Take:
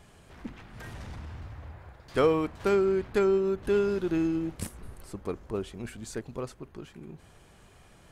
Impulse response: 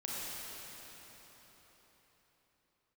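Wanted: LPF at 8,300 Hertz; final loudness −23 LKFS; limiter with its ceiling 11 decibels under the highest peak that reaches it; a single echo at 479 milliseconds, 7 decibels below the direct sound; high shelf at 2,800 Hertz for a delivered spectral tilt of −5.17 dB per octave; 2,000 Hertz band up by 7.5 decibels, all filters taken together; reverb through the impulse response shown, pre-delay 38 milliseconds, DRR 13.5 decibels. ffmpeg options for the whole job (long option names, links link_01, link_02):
-filter_complex "[0:a]lowpass=8300,equalizer=frequency=2000:width_type=o:gain=7,highshelf=frequency=2800:gain=7.5,alimiter=limit=-22dB:level=0:latency=1,aecho=1:1:479:0.447,asplit=2[link_01][link_02];[1:a]atrim=start_sample=2205,adelay=38[link_03];[link_02][link_03]afir=irnorm=-1:irlink=0,volume=-16.5dB[link_04];[link_01][link_04]amix=inputs=2:normalize=0,volume=10dB"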